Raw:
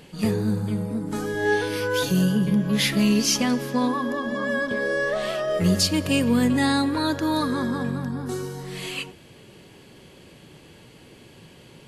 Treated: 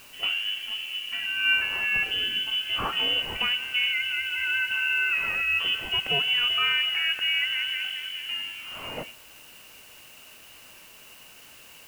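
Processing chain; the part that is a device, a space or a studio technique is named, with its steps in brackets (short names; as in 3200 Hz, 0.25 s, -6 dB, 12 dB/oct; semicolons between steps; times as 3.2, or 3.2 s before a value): scrambled radio voice (BPF 310–2600 Hz; inverted band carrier 3200 Hz; white noise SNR 23 dB)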